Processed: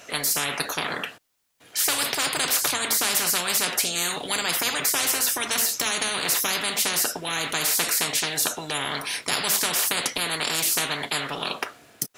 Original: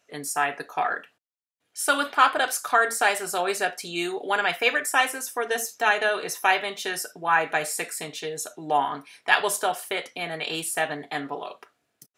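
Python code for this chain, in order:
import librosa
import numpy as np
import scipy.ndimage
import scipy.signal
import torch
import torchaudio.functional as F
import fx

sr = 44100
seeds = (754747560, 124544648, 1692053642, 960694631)

y = fx.spectral_comp(x, sr, ratio=10.0)
y = y * librosa.db_to_amplitude(-1.5)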